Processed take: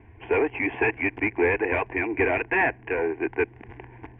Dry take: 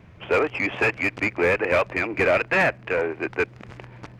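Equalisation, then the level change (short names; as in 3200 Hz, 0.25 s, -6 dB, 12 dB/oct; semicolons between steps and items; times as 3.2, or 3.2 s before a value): air absorption 460 m; fixed phaser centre 850 Hz, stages 8; +3.5 dB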